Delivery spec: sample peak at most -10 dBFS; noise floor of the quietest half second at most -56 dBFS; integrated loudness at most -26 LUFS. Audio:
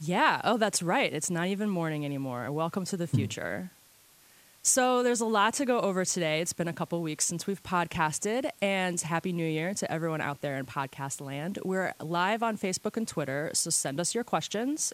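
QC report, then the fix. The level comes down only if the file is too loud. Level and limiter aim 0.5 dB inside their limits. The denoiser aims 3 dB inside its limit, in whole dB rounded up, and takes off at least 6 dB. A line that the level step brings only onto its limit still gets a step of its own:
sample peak -10.5 dBFS: OK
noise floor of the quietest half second -59 dBFS: OK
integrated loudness -29.5 LUFS: OK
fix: none

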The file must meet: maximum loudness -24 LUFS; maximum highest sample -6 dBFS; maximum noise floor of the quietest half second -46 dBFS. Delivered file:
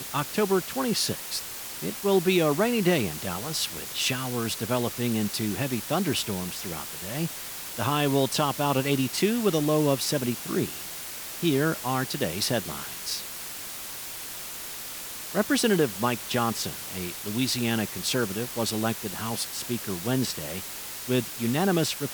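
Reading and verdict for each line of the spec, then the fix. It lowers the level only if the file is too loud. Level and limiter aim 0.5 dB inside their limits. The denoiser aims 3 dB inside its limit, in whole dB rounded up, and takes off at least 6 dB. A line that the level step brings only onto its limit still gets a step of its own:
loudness -27.0 LUFS: OK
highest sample -10.5 dBFS: OK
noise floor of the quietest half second -38 dBFS: fail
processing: denoiser 11 dB, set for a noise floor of -38 dBFS

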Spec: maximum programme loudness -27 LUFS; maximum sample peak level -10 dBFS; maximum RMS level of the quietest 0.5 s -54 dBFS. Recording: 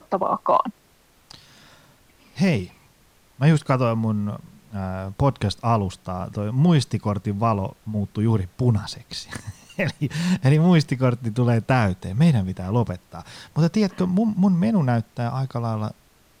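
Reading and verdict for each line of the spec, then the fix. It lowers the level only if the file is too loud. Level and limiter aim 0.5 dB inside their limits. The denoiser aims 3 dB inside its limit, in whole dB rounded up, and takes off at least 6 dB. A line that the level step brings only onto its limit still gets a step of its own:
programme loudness -22.5 LUFS: fail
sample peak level -5.5 dBFS: fail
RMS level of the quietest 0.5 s -58 dBFS: OK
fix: gain -5 dB

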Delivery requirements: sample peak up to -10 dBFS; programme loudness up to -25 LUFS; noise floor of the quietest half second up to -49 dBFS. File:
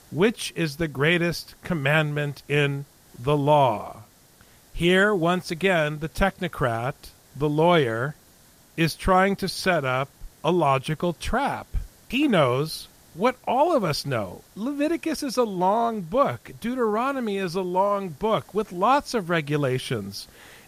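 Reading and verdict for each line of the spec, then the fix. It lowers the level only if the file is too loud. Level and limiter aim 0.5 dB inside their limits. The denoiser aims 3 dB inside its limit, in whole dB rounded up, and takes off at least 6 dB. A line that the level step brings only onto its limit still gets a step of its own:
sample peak -8.0 dBFS: fail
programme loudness -24.0 LUFS: fail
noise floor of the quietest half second -54 dBFS: OK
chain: gain -1.5 dB; limiter -10.5 dBFS

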